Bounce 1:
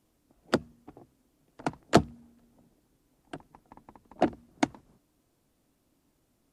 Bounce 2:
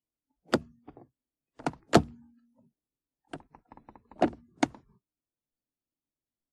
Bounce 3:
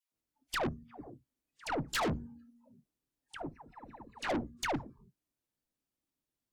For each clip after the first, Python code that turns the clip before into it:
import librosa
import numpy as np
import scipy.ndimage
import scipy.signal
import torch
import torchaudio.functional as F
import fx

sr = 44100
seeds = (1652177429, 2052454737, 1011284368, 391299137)

y1 = fx.noise_reduce_blind(x, sr, reduce_db=26)
y2 = fx.dispersion(y1, sr, late='lows', ms=126.0, hz=840.0)
y2 = fx.tube_stage(y2, sr, drive_db=35.0, bias=0.5)
y2 = F.gain(torch.from_numpy(y2), 5.0).numpy()